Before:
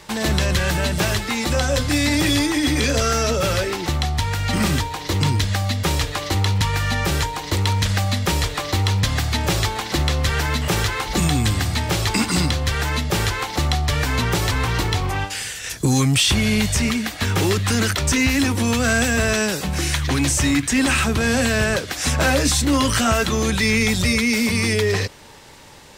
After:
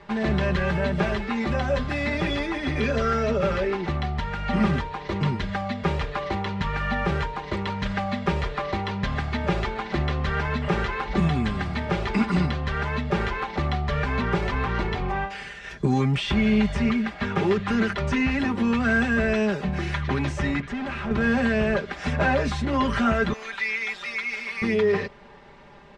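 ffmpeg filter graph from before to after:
ffmpeg -i in.wav -filter_complex "[0:a]asettb=1/sr,asplit=3[link_01][link_02][link_03];[link_01]atrim=end=20.604[link_04];[link_02]atrim=start=20.6:end=21.11,asetpts=PTS-STARTPTS,afade=type=in:duration=0.004:curve=qsin,afade=type=out:start_time=0.506:duration=0.004:curve=qsin,highshelf=frequency=6800:gain=-10.5,asoftclip=type=hard:threshold=-24.5dB[link_05];[link_03]atrim=start=21.106[link_06];[link_04][link_05]acrossfade=duration=0.004:curve1=hsin:curve2=qsin[link_07];[link_07][link_06]acrossfade=duration=0.004:curve1=qsin:curve2=hsin,asettb=1/sr,asplit=3[link_08][link_09][link_10];[link_08]atrim=end=23.334[link_11];[link_09]atrim=start=23.33:end=24.62,asetpts=PTS-STARTPTS,afade=type=in:duration=0.004:curve=qsin,afade=type=out:start_time=1.286:duration=0.004:curve=qsin,highpass=1200,acrusher=bits=4:mix=0:aa=0.5[link_12];[link_10]atrim=start=24.616[link_13];[link_11][link_12]acrossfade=duration=0.004:curve1=hsin:curve2=qsin[link_14];[link_14][link_13]acrossfade=duration=0.004:curve1=qsin:curve2=hsin,lowpass=2000,aecho=1:1:5:0.73,volume=-4dB" out.wav

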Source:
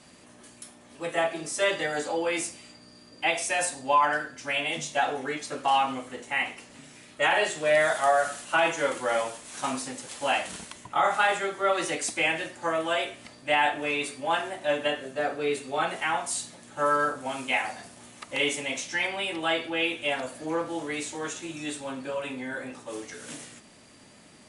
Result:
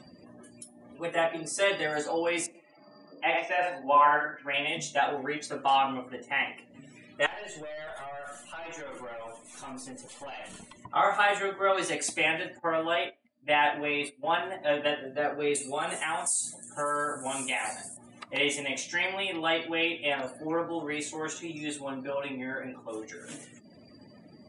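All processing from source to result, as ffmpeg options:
ffmpeg -i in.wav -filter_complex "[0:a]asettb=1/sr,asplit=3[link_01][link_02][link_03];[link_01]atrim=end=2.464[link_04];[link_02]atrim=start=2.46:end=4.54,asetpts=PTS-STARTPTS,afade=type=in:duration=0.004:curve=qsin,afade=type=out:start_time=2.076:duration=0.004:curve=qsin,highpass=160,lowpass=2500,bandreject=frequency=60:width_type=h:width=6,bandreject=frequency=120:width_type=h:width=6,bandreject=frequency=180:width_type=h:width=6,bandreject=frequency=240:width_type=h:width=6,bandreject=frequency=300:width_type=h:width=6,bandreject=frequency=360:width_type=h:width=6,bandreject=frequency=420:width_type=h:width=6,bandreject=frequency=480:width_type=h:width=6,bandreject=frequency=540:width_type=h:width=6,aecho=1:1:49|88:0.422|0.596,atrim=end_sample=91728[link_05];[link_03]atrim=start=4.536[link_06];[link_04][link_05]acrossfade=duration=0.004:curve1=hsin:curve2=qsin[link_07];[link_07][link_06]acrossfade=duration=0.004:curve1=qsin:curve2=hsin,asettb=1/sr,asplit=3[link_08][link_09][link_10];[link_08]atrim=end=7.264[link_11];[link_09]atrim=start=7.26:end=10.82,asetpts=PTS-STARTPTS,afade=type=in:duration=0.004:curve=qsin,afade=type=out:start_time=3.556:duration=0.004:curve=qsin,bandreject=frequency=1600:width=16,acompressor=threshold=-28dB:ratio=6:attack=3.2:release=140:knee=1:detection=peak,aeval=exprs='(tanh(70.8*val(0)+0.25)-tanh(0.25))/70.8':channel_layout=same[link_12];[link_10]atrim=start=10.816[link_13];[link_11][link_12]acrossfade=duration=0.004:curve1=hsin:curve2=qsin[link_14];[link_14][link_13]acrossfade=duration=0.004:curve1=qsin:curve2=hsin,asettb=1/sr,asplit=3[link_15][link_16][link_17];[link_15]atrim=end=12.594[link_18];[link_16]atrim=start=12.59:end=14.43,asetpts=PTS-STARTPTS,afade=type=in:duration=0.004:curve=qsin,afade=type=out:start_time=1.836:duration=0.004:curve=qsin,equalizer=frequency=6500:width_type=o:width=0.66:gain=-7.5,agate=range=-11dB:threshold=-38dB:ratio=16:release=100:detection=peak[link_19];[link_17]atrim=start=14.426[link_20];[link_18][link_19]acrossfade=duration=0.004:curve1=hsin:curve2=qsin[link_21];[link_21][link_20]acrossfade=duration=0.004:curve1=qsin:curve2=hsin,asettb=1/sr,asplit=3[link_22][link_23][link_24];[link_22]atrim=end=15.554[link_25];[link_23]atrim=start=15.55:end=17.97,asetpts=PTS-STARTPTS,afade=type=in:duration=0.004:curve=qsin,afade=type=out:start_time=2.416:duration=0.004:curve=qsin,equalizer=frequency=8700:width=1.1:gain=14.5,acompressor=threshold=-26dB:ratio=3:attack=3.2:release=140:knee=1:detection=peak[link_26];[link_24]atrim=start=17.966[link_27];[link_25][link_26]acrossfade=duration=0.004:curve1=hsin:curve2=qsin[link_28];[link_28][link_27]acrossfade=duration=0.004:curve1=qsin:curve2=hsin,acompressor=mode=upward:threshold=-40dB:ratio=2.5,afftdn=noise_reduction=30:noise_floor=-46,volume=-1dB" out.wav

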